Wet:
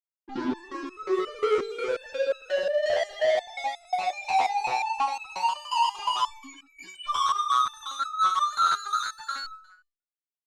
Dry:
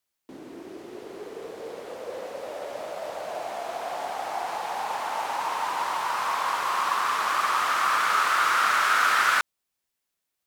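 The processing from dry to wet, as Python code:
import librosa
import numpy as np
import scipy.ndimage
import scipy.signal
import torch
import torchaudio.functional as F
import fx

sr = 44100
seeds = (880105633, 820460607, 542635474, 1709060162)

p1 = fx.high_shelf(x, sr, hz=3100.0, db=5.0)
p2 = fx.rider(p1, sr, range_db=3, speed_s=0.5)
p3 = p1 + F.gain(torch.from_numpy(p2), 2.0).numpy()
p4 = fx.formant_cascade(p3, sr, vowel='i', at=(6.26, 7.07), fade=0.02)
p5 = fx.doubler(p4, sr, ms=26.0, db=-12.5)
p6 = fx.spec_topn(p5, sr, count=1)
p7 = fx.fuzz(p6, sr, gain_db=51.0, gate_db=-60.0)
p8 = fx.air_absorb(p7, sr, metres=96.0)
p9 = fx.echo_feedback(p8, sr, ms=171, feedback_pct=26, wet_db=-17.5)
y = fx.resonator_held(p9, sr, hz=5.6, low_hz=85.0, high_hz=1300.0)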